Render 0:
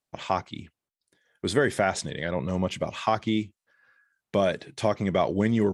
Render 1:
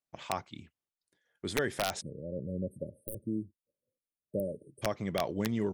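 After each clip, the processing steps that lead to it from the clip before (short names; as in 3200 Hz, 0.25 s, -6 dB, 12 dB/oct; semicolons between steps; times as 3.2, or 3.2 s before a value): wrapped overs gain 11.5 dB; spectral delete 2.01–4.82, 620–8400 Hz; gain -8.5 dB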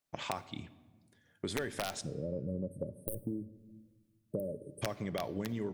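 compressor 6:1, threshold -40 dBFS, peak gain reduction 13.5 dB; shoebox room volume 1100 m³, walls mixed, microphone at 0.32 m; gain +6 dB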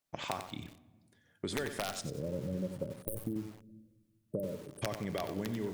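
lo-fi delay 92 ms, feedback 35%, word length 8-bit, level -7.5 dB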